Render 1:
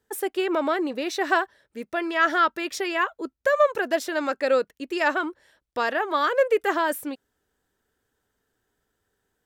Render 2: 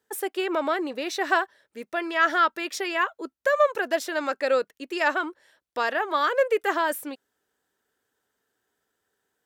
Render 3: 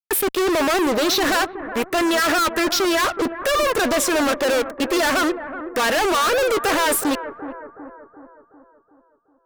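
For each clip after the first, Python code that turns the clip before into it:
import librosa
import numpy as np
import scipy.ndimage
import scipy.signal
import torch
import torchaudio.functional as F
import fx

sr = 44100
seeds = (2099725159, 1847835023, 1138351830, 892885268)

y1 = fx.highpass(x, sr, hz=350.0, slope=6)
y2 = fx.env_phaser(y1, sr, low_hz=590.0, high_hz=4600.0, full_db=-22.0)
y2 = fx.fuzz(y2, sr, gain_db=46.0, gate_db=-49.0)
y2 = fx.echo_bbd(y2, sr, ms=372, stages=4096, feedback_pct=51, wet_db=-11.5)
y2 = y2 * librosa.db_to_amplitude(-4.5)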